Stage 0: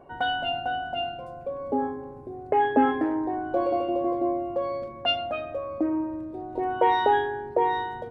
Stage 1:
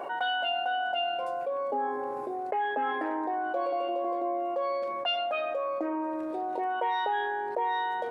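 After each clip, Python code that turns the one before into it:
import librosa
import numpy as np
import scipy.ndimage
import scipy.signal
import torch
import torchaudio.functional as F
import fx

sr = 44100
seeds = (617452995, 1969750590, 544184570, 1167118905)

y = fx.rider(x, sr, range_db=3, speed_s=0.5)
y = scipy.signal.sosfilt(scipy.signal.butter(2, 610.0, 'highpass', fs=sr, output='sos'), y)
y = fx.env_flatten(y, sr, amount_pct=70)
y = y * librosa.db_to_amplitude(-6.0)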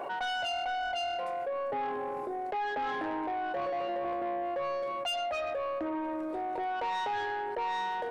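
y = 10.0 ** (-28.5 / 20.0) * np.tanh(x / 10.0 ** (-28.5 / 20.0))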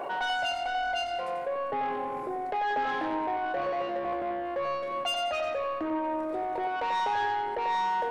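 y = fx.echo_feedback(x, sr, ms=91, feedback_pct=38, wet_db=-6.5)
y = y * librosa.db_to_amplitude(2.5)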